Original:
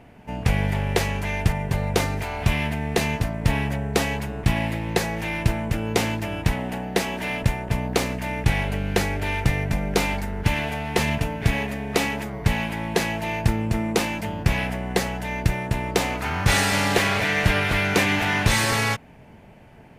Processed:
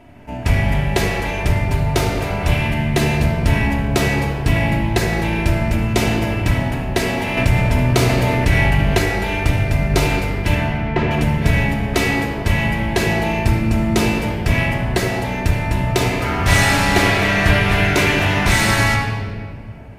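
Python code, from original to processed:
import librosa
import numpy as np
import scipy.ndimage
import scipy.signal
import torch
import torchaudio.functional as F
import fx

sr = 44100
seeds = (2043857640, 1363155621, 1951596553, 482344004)

y = fx.lowpass(x, sr, hz=2100.0, slope=12, at=(10.55, 11.11))
y = fx.room_shoebox(y, sr, seeds[0], volume_m3=3700.0, walls='mixed', distance_m=2.9)
y = fx.env_flatten(y, sr, amount_pct=50, at=(7.37, 8.99))
y = y * 10.0 ** (1.0 / 20.0)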